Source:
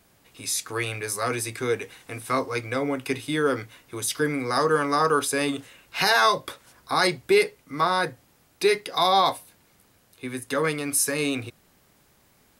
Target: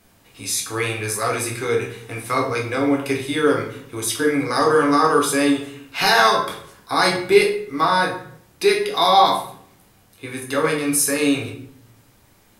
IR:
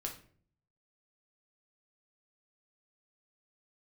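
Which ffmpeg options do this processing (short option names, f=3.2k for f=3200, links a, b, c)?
-filter_complex "[1:a]atrim=start_sample=2205,asetrate=31311,aresample=44100[a];[0:a][a]afir=irnorm=-1:irlink=0,volume=3.5dB"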